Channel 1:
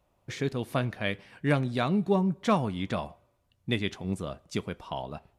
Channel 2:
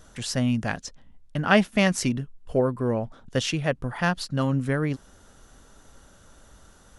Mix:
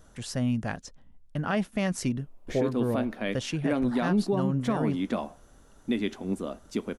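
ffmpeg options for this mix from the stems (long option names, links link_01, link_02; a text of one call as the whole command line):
ffmpeg -i stem1.wav -i stem2.wav -filter_complex "[0:a]lowshelf=frequency=180:width_type=q:width=3:gain=-9,adelay=2200,volume=1.5dB[link_01];[1:a]volume=-3dB[link_02];[link_01][link_02]amix=inputs=2:normalize=0,equalizer=frequency=3900:width=0.36:gain=-5,alimiter=limit=-17dB:level=0:latency=1:release=50" out.wav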